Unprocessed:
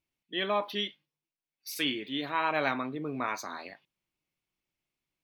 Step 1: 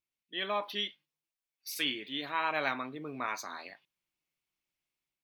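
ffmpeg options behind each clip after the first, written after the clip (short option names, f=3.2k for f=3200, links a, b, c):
-af "dynaudnorm=f=250:g=3:m=5dB,tiltshelf=f=700:g=-3.5,volume=-9dB"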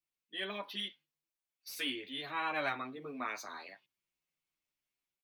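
-filter_complex "[0:a]acrossover=split=110|600|3000[a][b][c][d];[d]asoftclip=type=tanh:threshold=-37dB[e];[a][b][c][e]amix=inputs=4:normalize=0,asplit=2[f][g];[g]adelay=9.2,afreqshift=-0.92[h];[f][h]amix=inputs=2:normalize=1"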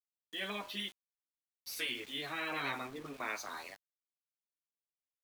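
-af "afftfilt=real='re*lt(hypot(re,im),0.0631)':imag='im*lt(hypot(re,im),0.0631)':win_size=1024:overlap=0.75,bandreject=f=123:t=h:w=4,bandreject=f=246:t=h:w=4,bandreject=f=369:t=h:w=4,bandreject=f=492:t=h:w=4,bandreject=f=615:t=h:w=4,bandreject=f=738:t=h:w=4,bandreject=f=861:t=h:w=4,bandreject=f=984:t=h:w=4,bandreject=f=1.107k:t=h:w=4,bandreject=f=1.23k:t=h:w=4,bandreject=f=1.353k:t=h:w=4,bandreject=f=1.476k:t=h:w=4,bandreject=f=1.599k:t=h:w=4,aeval=exprs='val(0)*gte(abs(val(0)),0.00251)':c=same,volume=2.5dB"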